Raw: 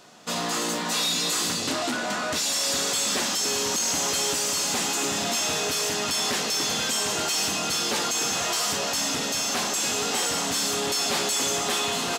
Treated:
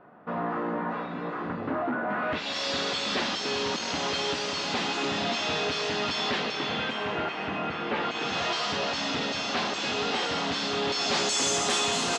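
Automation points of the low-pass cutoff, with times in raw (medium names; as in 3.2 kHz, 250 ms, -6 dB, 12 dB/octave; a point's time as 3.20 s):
low-pass 24 dB/octave
2.05 s 1.6 kHz
2.58 s 4.3 kHz
6.19 s 4.3 kHz
7.37 s 2.4 kHz
7.87 s 2.4 kHz
8.42 s 4.3 kHz
10.86 s 4.3 kHz
11.48 s 8.4 kHz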